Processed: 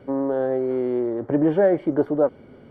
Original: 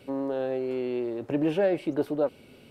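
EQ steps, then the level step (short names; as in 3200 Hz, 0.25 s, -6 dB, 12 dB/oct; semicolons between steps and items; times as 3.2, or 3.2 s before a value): polynomial smoothing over 41 samples; +6.5 dB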